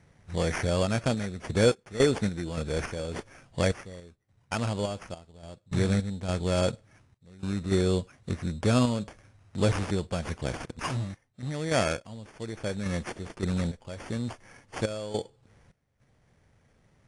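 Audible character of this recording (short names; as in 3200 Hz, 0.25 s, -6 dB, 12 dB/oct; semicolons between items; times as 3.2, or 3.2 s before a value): random-step tremolo, depth 95%; aliases and images of a low sample rate 3900 Hz, jitter 0%; AAC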